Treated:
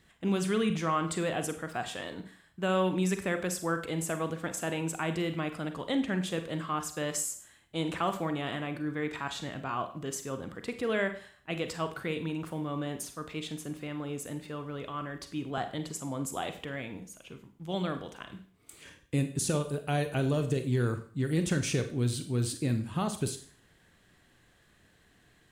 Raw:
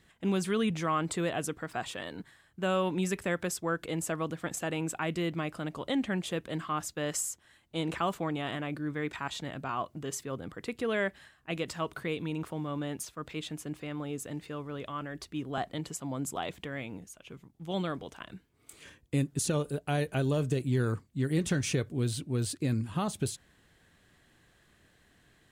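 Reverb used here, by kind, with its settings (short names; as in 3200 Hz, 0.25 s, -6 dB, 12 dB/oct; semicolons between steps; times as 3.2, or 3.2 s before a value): Schroeder reverb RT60 0.46 s, combs from 33 ms, DRR 8 dB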